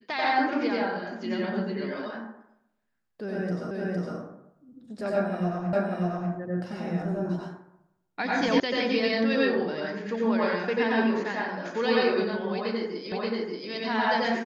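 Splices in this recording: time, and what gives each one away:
3.71 s: repeat of the last 0.46 s
5.73 s: repeat of the last 0.59 s
8.60 s: sound stops dead
13.12 s: repeat of the last 0.58 s

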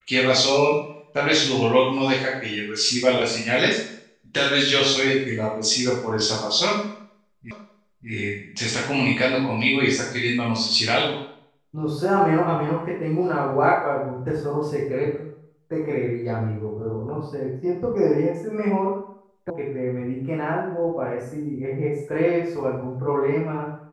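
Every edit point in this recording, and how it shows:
7.51 s: repeat of the last 0.59 s
19.50 s: sound stops dead

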